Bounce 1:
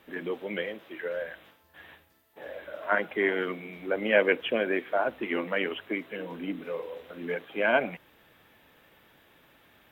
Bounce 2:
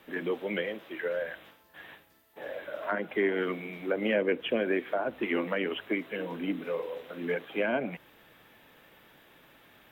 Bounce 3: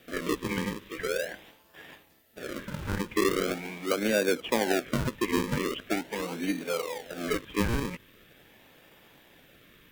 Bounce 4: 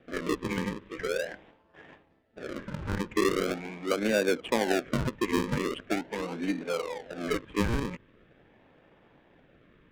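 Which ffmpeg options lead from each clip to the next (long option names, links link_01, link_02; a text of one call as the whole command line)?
ffmpeg -i in.wav -filter_complex "[0:a]equalizer=frequency=78:width_type=o:width=0.26:gain=-14.5,acrossover=split=420[link_01][link_02];[link_02]acompressor=threshold=-31dB:ratio=10[link_03];[link_01][link_03]amix=inputs=2:normalize=0,volume=2dB" out.wav
ffmpeg -i in.wav -filter_complex "[0:a]acrossover=split=1400[link_01][link_02];[link_01]acrusher=samples=42:mix=1:aa=0.000001:lfo=1:lforange=42:lforate=0.42[link_03];[link_02]alimiter=level_in=5dB:limit=-24dB:level=0:latency=1:release=353,volume=-5dB[link_04];[link_03][link_04]amix=inputs=2:normalize=0,volume=2dB" out.wav
ffmpeg -i in.wav -af "adynamicsmooth=sensitivity=5.5:basefreq=1600" out.wav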